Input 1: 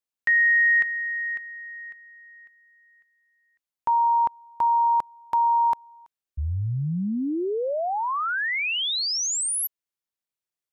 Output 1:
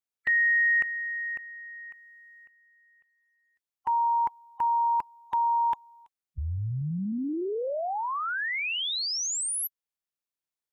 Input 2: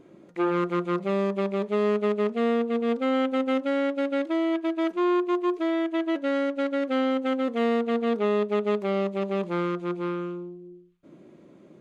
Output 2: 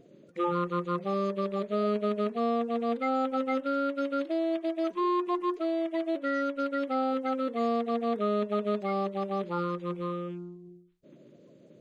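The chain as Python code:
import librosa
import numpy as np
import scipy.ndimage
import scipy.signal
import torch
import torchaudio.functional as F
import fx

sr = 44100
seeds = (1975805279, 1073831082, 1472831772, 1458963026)

y = fx.spec_quant(x, sr, step_db=30)
y = F.gain(torch.from_numpy(y), -3.5).numpy()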